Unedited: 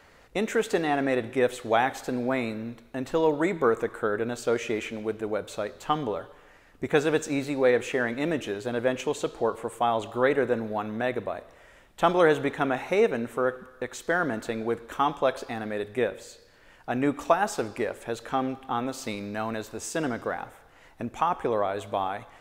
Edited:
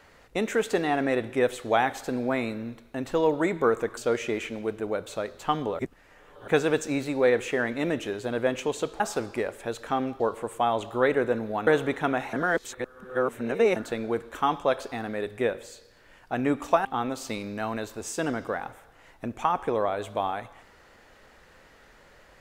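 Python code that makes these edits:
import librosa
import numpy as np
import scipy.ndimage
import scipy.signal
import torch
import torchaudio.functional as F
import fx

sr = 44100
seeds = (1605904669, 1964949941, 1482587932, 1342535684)

y = fx.edit(x, sr, fx.cut(start_s=3.97, length_s=0.41),
    fx.reverse_span(start_s=6.2, length_s=0.69),
    fx.cut(start_s=10.88, length_s=1.36),
    fx.reverse_span(start_s=12.9, length_s=1.43),
    fx.move(start_s=17.42, length_s=1.2, to_s=9.41), tone=tone)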